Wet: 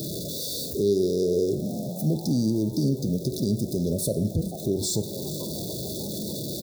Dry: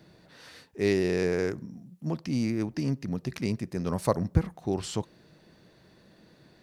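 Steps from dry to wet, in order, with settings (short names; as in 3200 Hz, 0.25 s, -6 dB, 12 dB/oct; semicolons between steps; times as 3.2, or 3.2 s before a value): zero-crossing step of -37.5 dBFS; brick-wall FIR band-stop 660–3400 Hz; frequency-shifting echo 0.441 s, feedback 38%, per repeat +150 Hz, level -21 dB; in parallel at +2.5 dB: compressor, threshold -39 dBFS, peak gain reduction 21 dB; on the sum: high shelf 11000 Hz +8.5 dB; limiter -18.5 dBFS, peak gain reduction 9 dB; on a send at -11.5 dB: reverb RT60 0.80 s, pre-delay 3 ms; on the sum: de-esser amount 40%; HPF 66 Hz; bell 1800 Hz -6.5 dB 1 oct; gain +3 dB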